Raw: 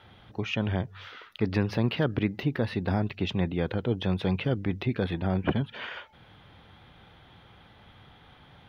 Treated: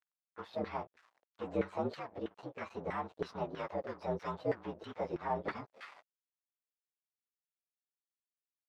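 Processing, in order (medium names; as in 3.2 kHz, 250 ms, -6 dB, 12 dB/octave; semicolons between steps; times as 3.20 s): frequency axis rescaled in octaves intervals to 117%; 1.93–2.57 s: compression 6:1, threshold -31 dBFS, peak gain reduction 8 dB; crossover distortion -44 dBFS; LFO band-pass saw down 3.1 Hz 450–1700 Hz; trim +6 dB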